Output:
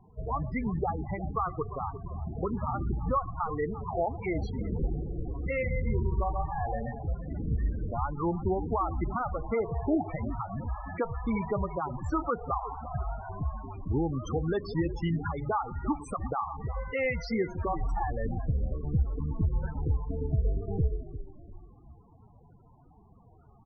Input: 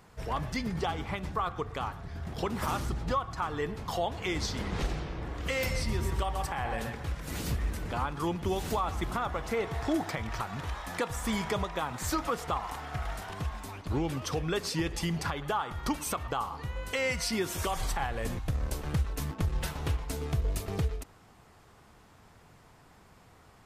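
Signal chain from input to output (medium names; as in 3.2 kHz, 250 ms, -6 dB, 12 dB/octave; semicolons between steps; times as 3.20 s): treble shelf 3.7 kHz -9 dB; frequency-shifting echo 348 ms, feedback 42%, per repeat -46 Hz, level -12 dB; loudest bins only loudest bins 16; wow and flutter 28 cents; trim +2.5 dB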